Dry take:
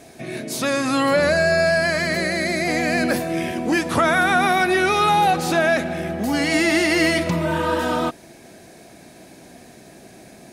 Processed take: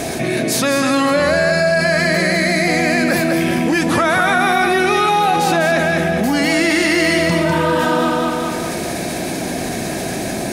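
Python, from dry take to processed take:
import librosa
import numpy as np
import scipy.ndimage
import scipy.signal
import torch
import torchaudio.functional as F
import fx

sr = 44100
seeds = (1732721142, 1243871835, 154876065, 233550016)

p1 = x + fx.echo_feedback(x, sr, ms=200, feedback_pct=34, wet_db=-5, dry=0)
y = fx.env_flatten(p1, sr, amount_pct=70)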